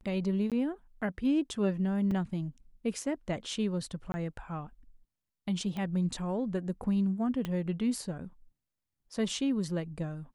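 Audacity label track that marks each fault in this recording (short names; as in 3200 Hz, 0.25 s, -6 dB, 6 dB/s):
0.500000	0.520000	gap 17 ms
2.110000	2.110000	gap 3.9 ms
4.120000	4.140000	gap 20 ms
5.770000	5.770000	pop -25 dBFS
7.450000	7.450000	pop -21 dBFS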